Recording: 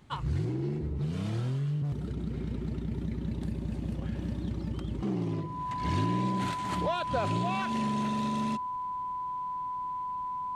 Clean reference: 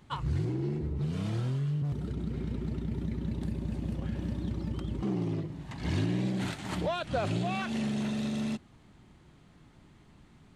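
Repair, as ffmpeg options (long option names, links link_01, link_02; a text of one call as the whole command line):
ffmpeg -i in.wav -af "bandreject=frequency=1000:width=30" out.wav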